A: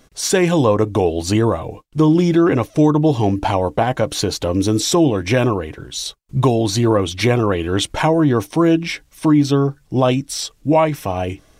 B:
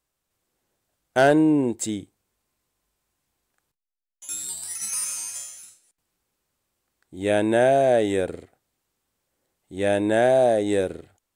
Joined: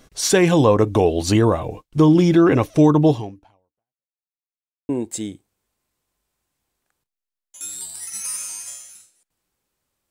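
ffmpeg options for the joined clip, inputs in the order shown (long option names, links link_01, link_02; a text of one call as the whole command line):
ffmpeg -i cue0.wav -i cue1.wav -filter_complex "[0:a]apad=whole_dur=10.1,atrim=end=10.1,asplit=2[link_01][link_02];[link_01]atrim=end=4.13,asetpts=PTS-STARTPTS,afade=type=out:start_time=3.1:duration=1.03:curve=exp[link_03];[link_02]atrim=start=4.13:end=4.89,asetpts=PTS-STARTPTS,volume=0[link_04];[1:a]atrim=start=1.57:end=6.78,asetpts=PTS-STARTPTS,afade=type=in:duration=0.004:curve=hsin[link_05];[link_03][link_04][link_05]concat=n=3:v=0:a=1" out.wav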